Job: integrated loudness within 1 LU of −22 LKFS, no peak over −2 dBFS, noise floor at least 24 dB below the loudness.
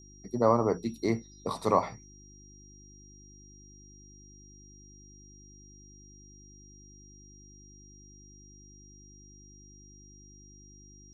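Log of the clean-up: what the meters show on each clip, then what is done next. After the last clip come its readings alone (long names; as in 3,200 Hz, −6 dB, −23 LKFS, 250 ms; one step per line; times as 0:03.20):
mains hum 50 Hz; hum harmonics up to 350 Hz; level of the hum −52 dBFS; interfering tone 5,700 Hz; level of the tone −55 dBFS; integrated loudness −29.0 LKFS; sample peak −9.5 dBFS; target loudness −22.0 LKFS
→ hum removal 50 Hz, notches 7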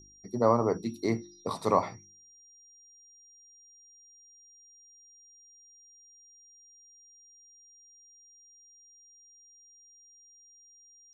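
mains hum none found; interfering tone 5,700 Hz; level of the tone −55 dBFS
→ notch filter 5,700 Hz, Q 30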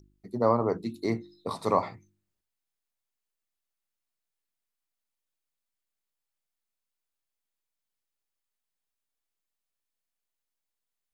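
interfering tone none found; integrated loudness −29.0 LKFS; sample peak −9.5 dBFS; target loudness −22.0 LKFS
→ level +7 dB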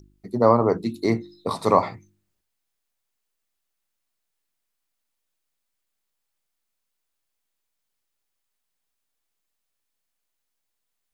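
integrated loudness −22.0 LKFS; sample peak −2.5 dBFS; background noise floor −79 dBFS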